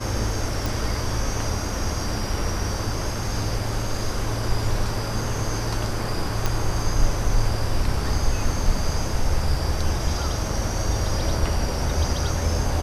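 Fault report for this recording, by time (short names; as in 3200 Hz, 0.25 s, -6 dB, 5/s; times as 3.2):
0.66 pop
6.46 pop -8 dBFS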